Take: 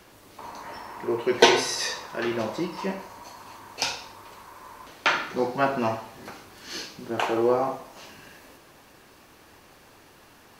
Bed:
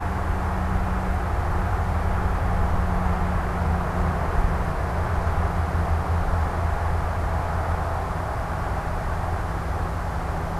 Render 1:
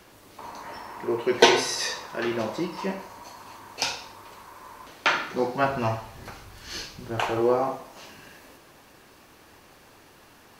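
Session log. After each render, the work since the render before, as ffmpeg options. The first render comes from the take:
-filter_complex "[0:a]asplit=3[a][b][c];[a]afade=t=out:st=5.63:d=0.02[d];[b]asubboost=boost=6.5:cutoff=97,afade=t=in:st=5.63:d=0.02,afade=t=out:st=7.39:d=0.02[e];[c]afade=t=in:st=7.39:d=0.02[f];[d][e][f]amix=inputs=3:normalize=0"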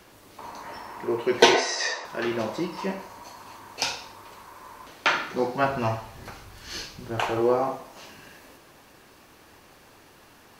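-filter_complex "[0:a]asettb=1/sr,asplit=3[a][b][c];[a]atrim=end=1.544[d];[b]atrim=start=1.54:end=2.05,asetpts=PTS-STARTPTS,afade=t=in:d=0.004:c=qsin,afade=t=out:st=0.506:d=0.004:c=qsin,highpass=f=290:w=0.5412,highpass=f=290:w=1.3066,equalizer=f=670:t=q:w=4:g=9,equalizer=f=1.9k:t=q:w=4:g=6,equalizer=f=3.4k:t=q:w=4:g=-3,lowpass=f=7.4k:w=0.5412,lowpass=f=7.4k:w=1.3066[e];[c]atrim=start=2.046[f];[d][e]acrossfade=d=0.004:c1=hsin:c2=qsin[g];[g][f]acrossfade=d=0.004:c1=qsin:c2=hsin"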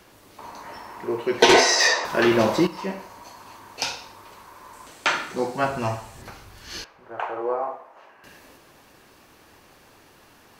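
-filter_complex "[0:a]asettb=1/sr,asplit=3[a][b][c];[a]atrim=end=1.494[d];[b]atrim=start=1.49:end=2.67,asetpts=PTS-STARTPTS,afade=t=in:d=0.004:c=qsin,afade=t=out:st=1.176:d=0.004:c=qsin,aeval=exprs='0.355*sin(PI/2*2*val(0)/0.355)':c=same[e];[c]atrim=start=2.666[f];[d][e]acrossfade=d=0.004:c1=hsin:c2=qsin[g];[g][f]acrossfade=d=0.004:c1=qsin:c2=hsin,asettb=1/sr,asplit=3[h][i][j];[h]atrim=end=4.734[k];[i]atrim=start=4.73:end=6.22,asetpts=PTS-STARTPTS,afade=t=in:d=0.004:c=qsin,afade=t=out:st=1.486:d=0.004:c=qsin,equalizer=f=8k:t=o:w=0.57:g=11.5[l];[j]atrim=start=6.216[m];[k][l]acrossfade=d=0.004:c1=hsin:c2=qsin[n];[n][m]acrossfade=d=0.004:c1=qsin:c2=hsin,asettb=1/sr,asplit=3[o][p][q];[o]atrim=end=6.844[r];[p]atrim=start=6.84:end=8.24,asetpts=PTS-STARTPTS,afade=t=in:d=0.004:c=qsin,afade=t=out:st=1.396:d=0.004:c=qsin,acrossover=split=440 2000:gain=0.1 1 0.0794[s][t][u];[s][t][u]amix=inputs=3:normalize=0[v];[q]atrim=start=8.236[w];[r][v]acrossfade=d=0.004:c1=hsin:c2=qsin[x];[x][w]acrossfade=d=0.004:c1=qsin:c2=hsin"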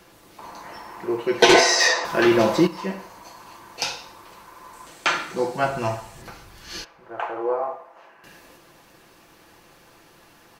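-af "aecho=1:1:5.9:0.39"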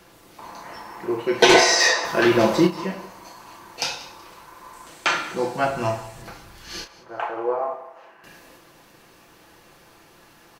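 -filter_complex "[0:a]asplit=2[a][b];[b]adelay=33,volume=-8dB[c];[a][c]amix=inputs=2:normalize=0,aecho=1:1:188|376|564:0.119|0.0357|0.0107"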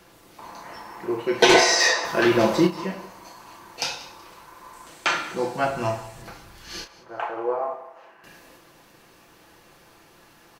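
-af "volume=-1.5dB"

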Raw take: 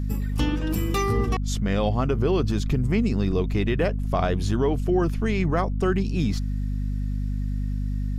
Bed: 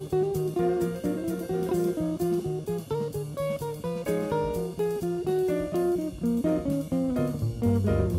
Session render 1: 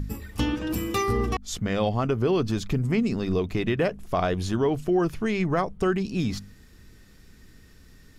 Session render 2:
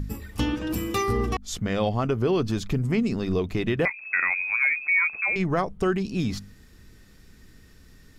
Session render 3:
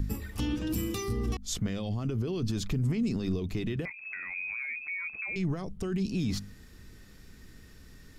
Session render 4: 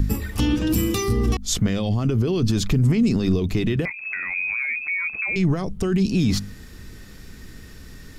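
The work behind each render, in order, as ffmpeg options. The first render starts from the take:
-af "bandreject=f=50:t=h:w=4,bandreject=f=100:t=h:w=4,bandreject=f=150:t=h:w=4,bandreject=f=200:t=h:w=4,bandreject=f=250:t=h:w=4"
-filter_complex "[0:a]asettb=1/sr,asplit=3[a][b][c];[a]atrim=end=3.854[d];[b]atrim=start=3.85:end=5.36,asetpts=PTS-STARTPTS,afade=t=in:d=0.004:c=qsin,afade=t=out:st=1.506:d=0.004:c=qsin,lowpass=f=2.2k:t=q:w=0.5098,lowpass=f=2.2k:t=q:w=0.6013,lowpass=f=2.2k:t=q:w=0.9,lowpass=f=2.2k:t=q:w=2.563,afreqshift=-2600[e];[c]atrim=start=5.356[f];[d][e]acrossfade=d=0.004:c1=hsin:c2=qsin[g];[g][f]acrossfade=d=0.004:c1=qsin:c2=hsin"
-filter_complex "[0:a]alimiter=limit=-21dB:level=0:latency=1:release=19,acrossover=split=340|3000[a][b][c];[b]acompressor=threshold=-43dB:ratio=6[d];[a][d][c]amix=inputs=3:normalize=0"
-af "volume=10.5dB"

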